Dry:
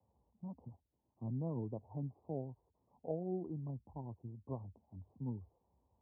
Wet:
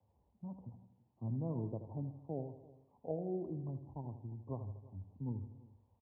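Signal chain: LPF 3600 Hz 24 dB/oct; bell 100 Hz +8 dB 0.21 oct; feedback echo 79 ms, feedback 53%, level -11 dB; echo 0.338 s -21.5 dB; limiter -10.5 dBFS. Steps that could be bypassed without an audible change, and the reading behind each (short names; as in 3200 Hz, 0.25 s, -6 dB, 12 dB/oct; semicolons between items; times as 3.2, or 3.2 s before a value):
LPF 3600 Hz: input band ends at 960 Hz; limiter -10.5 dBFS: input peak -26.0 dBFS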